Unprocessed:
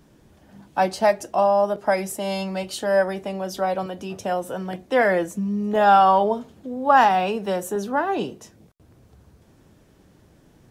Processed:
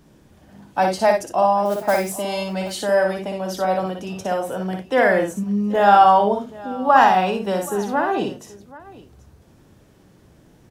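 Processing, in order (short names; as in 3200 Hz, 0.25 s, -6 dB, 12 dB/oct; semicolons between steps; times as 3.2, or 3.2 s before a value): 1.65–2.16 modulation noise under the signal 19 dB; on a send: tapped delay 59/91/780 ms -4.5/-19/-19.5 dB; on the sum: gain +1 dB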